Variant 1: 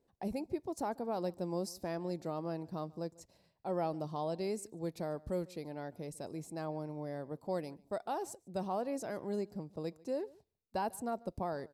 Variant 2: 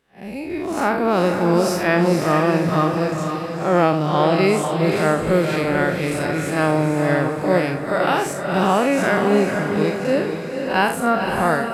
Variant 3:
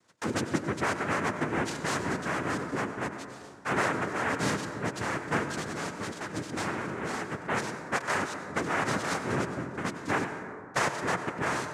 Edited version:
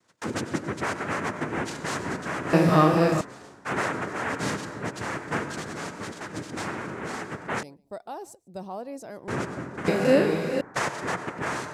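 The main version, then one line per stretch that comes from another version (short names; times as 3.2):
3
2.53–3.21 from 2
7.63–9.28 from 1
9.88–10.61 from 2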